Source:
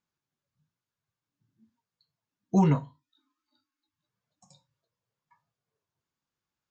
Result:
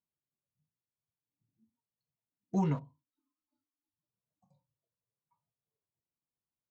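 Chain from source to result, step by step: Wiener smoothing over 25 samples; gain -8 dB

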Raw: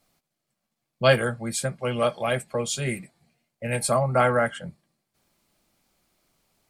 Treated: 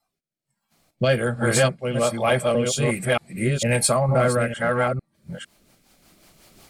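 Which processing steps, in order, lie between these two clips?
reverse delay 0.454 s, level -2.5 dB; recorder AGC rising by 8.7 dB/s; in parallel at -9 dB: soft clip -18.5 dBFS, distortion -11 dB; on the sum: rotary speaker horn 1.2 Hz, later 5.5 Hz, at 4.55; spectral noise reduction 14 dB; gain +1 dB

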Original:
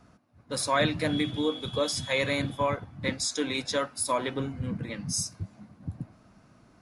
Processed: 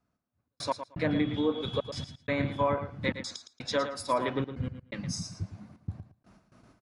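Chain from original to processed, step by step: gate with hold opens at -46 dBFS; treble ducked by the level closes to 1700 Hz, closed at -22.5 dBFS; step gate "xxxx.x..xxx" 125 bpm -60 dB; on a send: feedback echo 0.113 s, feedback 15%, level -10 dB

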